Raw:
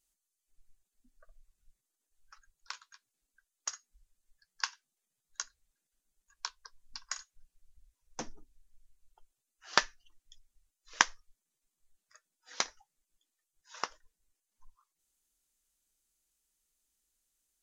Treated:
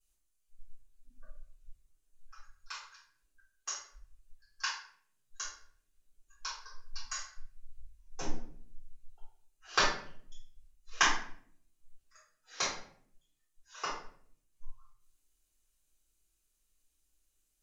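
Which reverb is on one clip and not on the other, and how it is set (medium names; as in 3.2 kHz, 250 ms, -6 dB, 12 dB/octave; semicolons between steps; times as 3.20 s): simulated room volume 76 m³, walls mixed, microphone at 3.8 m; trim -12 dB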